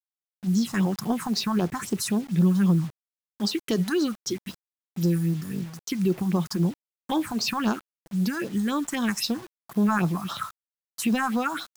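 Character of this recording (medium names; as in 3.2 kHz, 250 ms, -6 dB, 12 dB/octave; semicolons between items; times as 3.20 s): phasing stages 4, 3.8 Hz, lowest notch 410–2300 Hz; a quantiser's noise floor 8-bit, dither none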